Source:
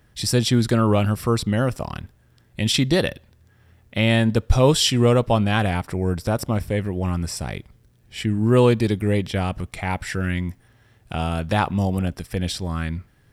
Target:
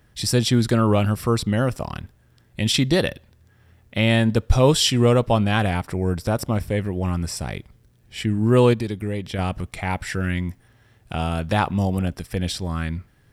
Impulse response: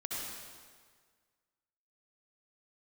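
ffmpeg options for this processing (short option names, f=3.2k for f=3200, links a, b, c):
-filter_complex "[0:a]asettb=1/sr,asplit=3[a][b][c];[a]atrim=end=8.734[d];[b]atrim=start=8.73:end=9.39,asetpts=PTS-STARTPTS,afade=t=in:d=0.004:c=qsin,afade=t=out:st=0.656:d=0.004:c=qsin,acompressor=threshold=-25dB:ratio=2.5[e];[c]atrim=start=9.386[f];[d][e]acrossfade=d=0.004:c1=hsin:c2=qsin[g];[g][f]acrossfade=d=0.004:c1=qsin:c2=hsin"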